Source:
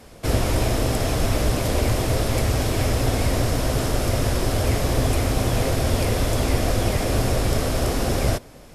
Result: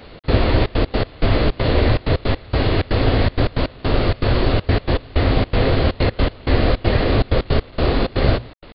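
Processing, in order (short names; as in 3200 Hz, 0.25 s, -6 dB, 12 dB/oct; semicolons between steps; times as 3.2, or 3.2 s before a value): notches 60/120/180/240 Hz; step gate "xx.xxxx.x.x..x" 160 bpm -24 dB; bit-crush 8-bit; downsampling 11025 Hz; formant shift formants -2 st; gain +6 dB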